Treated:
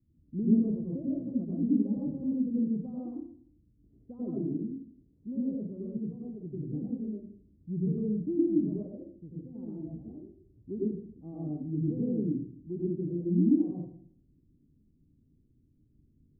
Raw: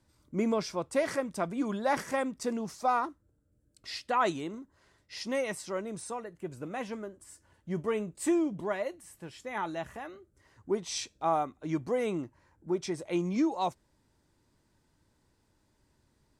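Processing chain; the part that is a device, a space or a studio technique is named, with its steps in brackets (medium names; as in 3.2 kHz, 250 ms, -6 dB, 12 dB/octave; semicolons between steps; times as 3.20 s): next room (low-pass 290 Hz 24 dB/octave; reverberation RT60 0.55 s, pre-delay 86 ms, DRR -5.5 dB)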